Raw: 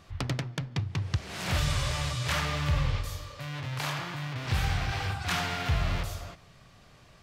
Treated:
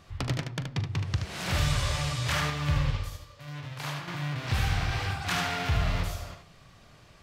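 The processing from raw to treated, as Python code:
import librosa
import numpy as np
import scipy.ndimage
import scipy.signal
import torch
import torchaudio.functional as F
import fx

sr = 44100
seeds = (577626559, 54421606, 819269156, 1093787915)

y = fx.room_early_taps(x, sr, ms=(41, 75), db=(-15.0, -6.5))
y = fx.upward_expand(y, sr, threshold_db=-42.0, expansion=1.5, at=(2.5, 4.08))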